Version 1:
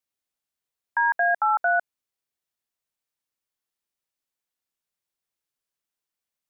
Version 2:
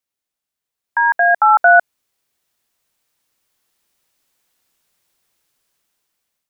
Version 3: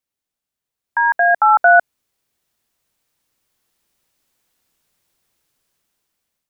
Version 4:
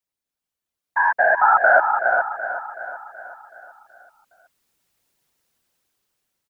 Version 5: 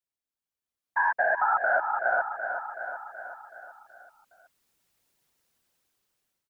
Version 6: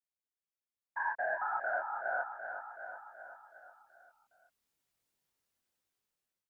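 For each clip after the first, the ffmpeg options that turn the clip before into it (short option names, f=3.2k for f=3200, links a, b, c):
-af "dynaudnorm=f=640:g=5:m=16.5dB,volume=3dB"
-af "lowshelf=f=380:g=5.5,volume=-1.5dB"
-filter_complex "[0:a]asplit=2[a][b];[b]aecho=0:1:415:0.447[c];[a][c]amix=inputs=2:normalize=0,afftfilt=real='hypot(re,im)*cos(2*PI*random(0))':imag='hypot(re,im)*sin(2*PI*random(1))':win_size=512:overlap=0.75,asplit=2[d][e];[e]aecho=0:1:376|752|1128|1504|1880|2256:0.316|0.168|0.0888|0.0471|0.025|0.0132[f];[d][f]amix=inputs=2:normalize=0,volume=3dB"
-af "dynaudnorm=f=450:g=3:m=5.5dB,alimiter=limit=-6dB:level=0:latency=1:release=265,volume=-8dB"
-af "flanger=delay=19:depth=6.6:speed=0.33,volume=-7dB"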